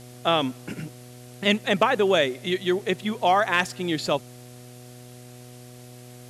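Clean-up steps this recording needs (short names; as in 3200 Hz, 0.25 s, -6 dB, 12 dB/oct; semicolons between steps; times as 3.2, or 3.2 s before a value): clip repair -8 dBFS; de-hum 123.2 Hz, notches 6; denoiser 24 dB, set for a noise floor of -45 dBFS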